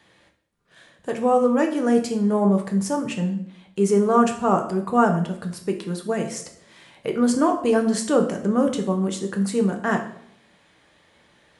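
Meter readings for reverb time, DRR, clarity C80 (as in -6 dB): 0.70 s, 3.5 dB, 12.5 dB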